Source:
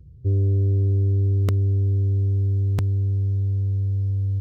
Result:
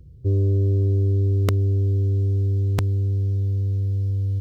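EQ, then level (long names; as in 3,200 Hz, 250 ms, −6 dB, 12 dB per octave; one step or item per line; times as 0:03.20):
parametric band 100 Hz −6.5 dB 3 octaves
+6.5 dB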